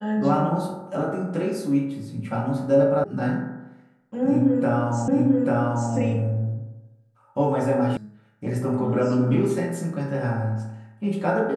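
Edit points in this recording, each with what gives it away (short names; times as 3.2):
3.04 sound cut off
5.08 repeat of the last 0.84 s
7.97 sound cut off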